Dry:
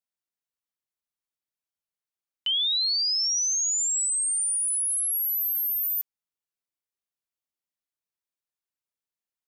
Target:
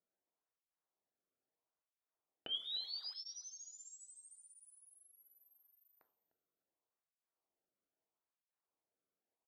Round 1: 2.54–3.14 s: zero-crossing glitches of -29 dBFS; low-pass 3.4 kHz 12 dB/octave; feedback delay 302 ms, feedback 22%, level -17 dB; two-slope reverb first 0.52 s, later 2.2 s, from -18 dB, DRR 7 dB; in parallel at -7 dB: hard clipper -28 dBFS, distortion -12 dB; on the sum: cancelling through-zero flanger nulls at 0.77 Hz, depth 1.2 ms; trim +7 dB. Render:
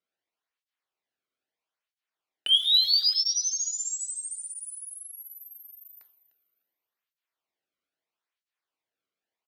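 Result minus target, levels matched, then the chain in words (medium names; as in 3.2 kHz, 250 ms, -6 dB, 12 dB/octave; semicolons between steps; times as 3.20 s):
1 kHz band -17.0 dB
2.54–3.14 s: zero-crossing glitches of -29 dBFS; low-pass 870 Hz 12 dB/octave; feedback delay 302 ms, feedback 22%, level -17 dB; two-slope reverb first 0.52 s, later 2.2 s, from -18 dB, DRR 7 dB; in parallel at -7 dB: hard clipper -28 dBFS, distortion -120 dB; on the sum: cancelling through-zero flanger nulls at 0.77 Hz, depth 1.2 ms; trim +7 dB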